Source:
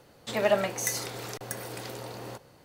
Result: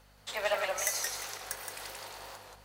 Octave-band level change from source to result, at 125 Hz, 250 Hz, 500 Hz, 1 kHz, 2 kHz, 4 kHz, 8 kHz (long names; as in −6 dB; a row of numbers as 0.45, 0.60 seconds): −18.5, −19.5, −7.5, −3.0, −0.5, −0.5, −0.5 decibels